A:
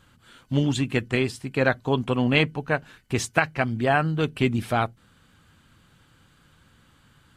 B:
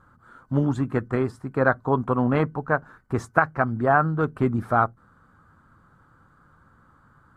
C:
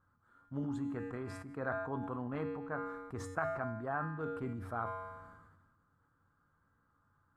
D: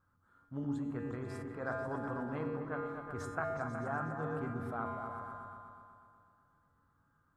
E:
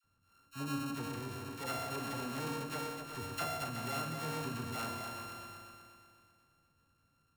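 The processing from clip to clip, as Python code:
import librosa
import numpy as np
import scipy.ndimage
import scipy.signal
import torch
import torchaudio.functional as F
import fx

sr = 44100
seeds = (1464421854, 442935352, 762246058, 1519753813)

y1 = fx.high_shelf_res(x, sr, hz=1900.0, db=-13.5, q=3.0)
y2 = fx.comb_fb(y1, sr, f0_hz=94.0, decay_s=1.0, harmonics='odd', damping=0.0, mix_pct=80)
y2 = fx.sustainer(y2, sr, db_per_s=39.0)
y2 = y2 * 10.0 ** (-6.0 / 20.0)
y3 = fx.echo_opening(y2, sr, ms=123, hz=400, octaves=2, feedback_pct=70, wet_db=-3)
y3 = y3 * 10.0 ** (-1.5 / 20.0)
y4 = np.r_[np.sort(y3[:len(y3) // 32 * 32].reshape(-1, 32), axis=1).ravel(), y3[len(y3) // 32 * 32:]]
y4 = fx.dispersion(y4, sr, late='lows', ms=45.0, hz=910.0)
y4 = y4 * 10.0 ** (-1.0 / 20.0)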